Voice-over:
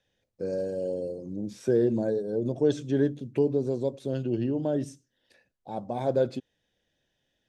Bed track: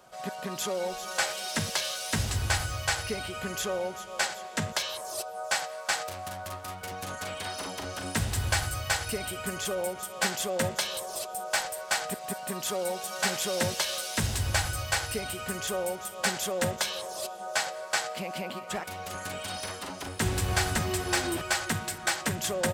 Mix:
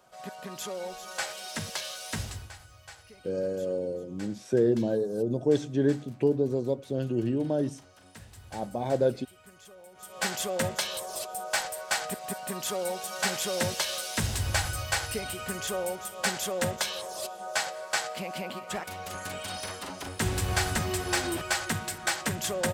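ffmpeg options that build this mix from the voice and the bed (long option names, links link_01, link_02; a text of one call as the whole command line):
ffmpeg -i stem1.wav -i stem2.wav -filter_complex "[0:a]adelay=2850,volume=0dB[link_01];[1:a]volume=14.5dB,afade=type=out:start_time=2.19:duration=0.32:silence=0.177828,afade=type=in:start_time=9.91:duration=0.42:silence=0.105925[link_02];[link_01][link_02]amix=inputs=2:normalize=0" out.wav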